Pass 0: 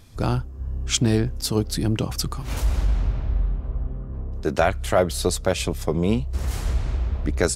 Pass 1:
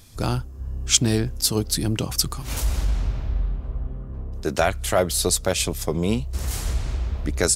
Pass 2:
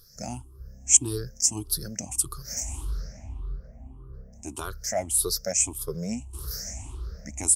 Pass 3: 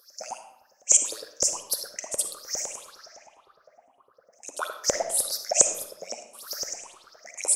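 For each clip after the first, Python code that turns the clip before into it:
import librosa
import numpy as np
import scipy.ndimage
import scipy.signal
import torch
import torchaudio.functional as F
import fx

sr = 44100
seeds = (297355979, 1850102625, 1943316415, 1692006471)

y1 = fx.high_shelf(x, sr, hz=3800.0, db=10.5)
y1 = F.gain(torch.from_numpy(y1), -1.5).numpy()
y2 = fx.spec_ripple(y1, sr, per_octave=0.61, drift_hz=1.7, depth_db=23)
y2 = fx.high_shelf_res(y2, sr, hz=4600.0, db=7.5, q=3.0)
y2 = F.gain(torch.from_numpy(y2), -16.0).numpy()
y3 = fx.filter_lfo_highpass(y2, sr, shape='saw_up', hz=9.8, low_hz=500.0, high_hz=7200.0, q=7.0)
y3 = fx.rev_freeverb(y3, sr, rt60_s=0.76, hf_ratio=0.75, predelay_ms=15, drr_db=7.0)
y3 = F.gain(torch.from_numpy(y3), -3.0).numpy()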